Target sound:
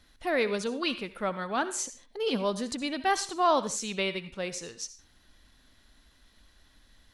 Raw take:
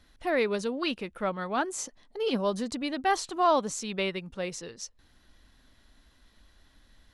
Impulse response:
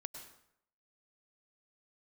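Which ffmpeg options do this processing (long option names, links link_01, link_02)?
-filter_complex "[0:a]asplit=2[link_01][link_02];[link_02]tiltshelf=frequency=1400:gain=-5.5[link_03];[1:a]atrim=start_sample=2205,afade=type=out:start_time=0.37:duration=0.01,atrim=end_sample=16758,asetrate=70560,aresample=44100[link_04];[link_03][link_04]afir=irnorm=-1:irlink=0,volume=3.5dB[link_05];[link_01][link_05]amix=inputs=2:normalize=0,volume=-3.5dB"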